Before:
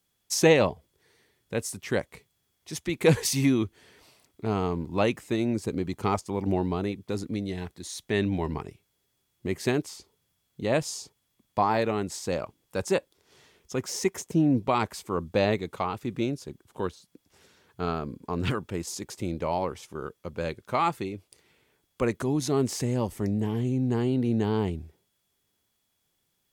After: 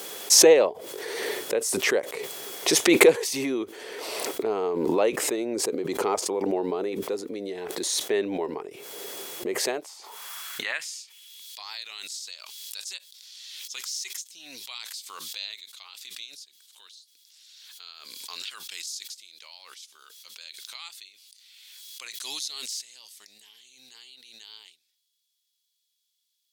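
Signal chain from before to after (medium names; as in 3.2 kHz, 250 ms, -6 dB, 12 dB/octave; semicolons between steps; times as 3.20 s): high-pass sweep 440 Hz -> 4 kHz, 9.48–11.49 s; swell ahead of each attack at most 24 dB/s; trim -3 dB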